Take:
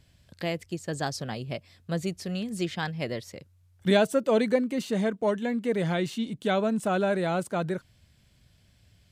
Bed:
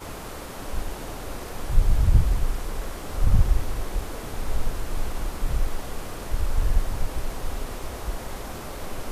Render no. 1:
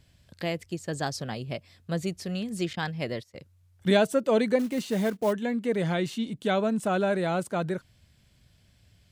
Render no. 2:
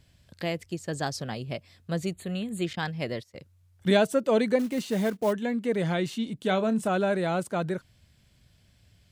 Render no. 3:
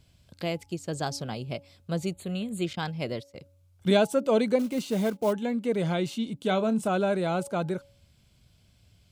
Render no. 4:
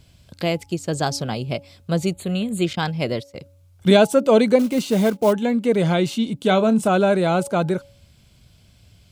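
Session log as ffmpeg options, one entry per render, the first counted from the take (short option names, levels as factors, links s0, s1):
-filter_complex "[0:a]asettb=1/sr,asplit=3[s0][s1][s2];[s0]atrim=end=2.734[s3];[s1]atrim=start=2.73:end=3.36,asetpts=PTS-STARTPTS,afade=t=in:d=0.004:c=qsin,afade=t=out:st=0.626:d=0.004:c=qsin,agate=range=0.141:threshold=0.00794:ratio=16:release=100:detection=peak[s4];[s2]atrim=start=3.356[s5];[s3][s4]acrossfade=d=0.004:c1=hsin:c2=qsin[s6];[s6][s5]acrossfade=d=0.004:c1=qsin:c2=hsin,asettb=1/sr,asplit=3[s7][s8][s9];[s7]atrim=end=4.594[s10];[s8]atrim=start=4.59:end=5.33,asetpts=PTS-STARTPTS,afade=t=in:d=0.004:c=qsin,afade=t=out:st=0.736:d=0.004:c=qsin,acrusher=bits=5:mode=log:mix=0:aa=0.000001[s11];[s9]atrim=start=5.326[s12];[s10][s11]acrossfade=d=0.004:c1=hsin:c2=qsin[s13];[s13][s12]acrossfade=d=0.004:c1=qsin:c2=hsin"
-filter_complex "[0:a]asettb=1/sr,asplit=3[s0][s1][s2];[s0]atrim=end=2.134[s3];[s1]atrim=start=2.13:end=2.65,asetpts=PTS-STARTPTS,afade=t=in:d=0.004:c=qsin,afade=t=out:st=0.516:d=0.004:c=qsin,asuperstop=centerf=5400:order=8:qfactor=2.1[s4];[s2]atrim=start=2.646[s5];[s3][s4]acrossfade=d=0.004:c1=hsin:c2=qsin[s6];[s6][s5]acrossfade=d=0.004:c1=qsin:c2=hsin,asettb=1/sr,asplit=3[s7][s8][s9];[s7]atrim=end=6.464[s10];[s8]atrim=start=6.46:end=6.89,asetpts=PTS-STARTPTS,afade=t=in:d=0.004:c=qsin,afade=t=out:st=0.426:d=0.004:c=qsin,asplit=2[s11][s12];[s12]adelay=27,volume=0.237[s13];[s11][s13]amix=inputs=2:normalize=0,atrim=end_sample=18963[s14];[s9]atrim=start=6.886[s15];[s10][s14]acrossfade=d=0.004:c1=hsin:c2=qsin[s16];[s16][s15]acrossfade=d=0.004:c1=qsin:c2=hsin"
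-af "equalizer=f=1800:w=6.9:g=-11.5,bandreject=f=280.9:t=h:w=4,bandreject=f=561.8:t=h:w=4,bandreject=f=842.7:t=h:w=4"
-af "volume=2.66,alimiter=limit=0.708:level=0:latency=1"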